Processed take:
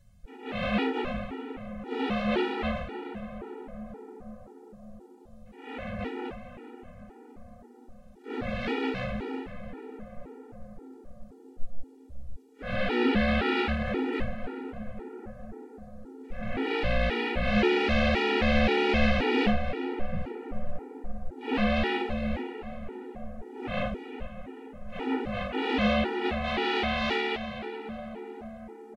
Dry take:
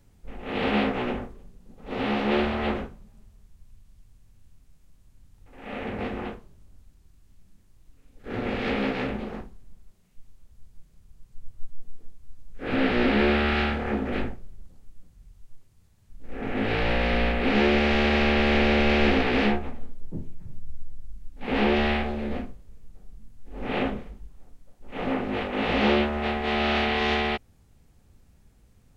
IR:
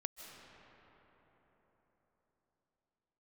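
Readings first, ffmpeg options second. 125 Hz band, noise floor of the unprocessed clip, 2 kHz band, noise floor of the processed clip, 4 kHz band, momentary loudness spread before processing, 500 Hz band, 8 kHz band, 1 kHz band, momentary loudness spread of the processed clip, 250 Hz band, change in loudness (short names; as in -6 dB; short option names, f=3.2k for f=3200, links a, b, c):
-2.5 dB, -58 dBFS, -3.5 dB, -52 dBFS, -3.5 dB, 17 LU, -3.0 dB, n/a, -3.0 dB, 21 LU, -3.0 dB, -4.0 dB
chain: -filter_complex "[0:a]asplit=4[a][b][c][d];[b]adelay=416,afreqshift=62,volume=-21dB[e];[c]adelay=832,afreqshift=124,volume=-29.2dB[f];[d]adelay=1248,afreqshift=186,volume=-37.4dB[g];[a][e][f][g]amix=inputs=4:normalize=0,asplit=2[h][i];[1:a]atrim=start_sample=2205,asetrate=24255,aresample=44100[j];[i][j]afir=irnorm=-1:irlink=0,volume=-1dB[k];[h][k]amix=inputs=2:normalize=0,afftfilt=real='re*gt(sin(2*PI*1.9*pts/sr)*(1-2*mod(floor(b*sr/1024/250),2)),0)':imag='im*gt(sin(2*PI*1.9*pts/sr)*(1-2*mod(floor(b*sr/1024/250),2)),0)':win_size=1024:overlap=0.75,volume=-5.5dB"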